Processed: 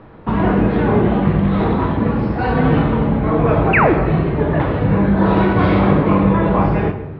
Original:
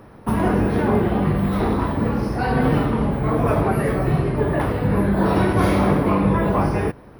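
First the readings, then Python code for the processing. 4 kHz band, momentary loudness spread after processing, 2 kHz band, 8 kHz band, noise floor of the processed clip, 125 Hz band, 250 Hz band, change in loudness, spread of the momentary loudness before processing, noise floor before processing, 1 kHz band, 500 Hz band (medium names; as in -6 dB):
+2.0 dB, 4 LU, +6.0 dB, under -25 dB, -29 dBFS, +4.5 dB, +4.5 dB, +4.5 dB, 4 LU, -43 dBFS, +4.0 dB, +3.5 dB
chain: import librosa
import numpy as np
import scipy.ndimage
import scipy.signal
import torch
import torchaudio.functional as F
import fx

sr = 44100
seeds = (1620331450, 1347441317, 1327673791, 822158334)

y = scipy.signal.sosfilt(scipy.signal.butter(6, 4000.0, 'lowpass', fs=sr, output='sos'), x)
y = fx.spec_paint(y, sr, seeds[0], shape='fall', start_s=3.73, length_s=0.21, low_hz=250.0, high_hz=2900.0, level_db=-16.0)
y = fx.room_shoebox(y, sr, seeds[1], volume_m3=460.0, walls='mixed', distance_m=0.61)
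y = y * 10.0 ** (2.5 / 20.0)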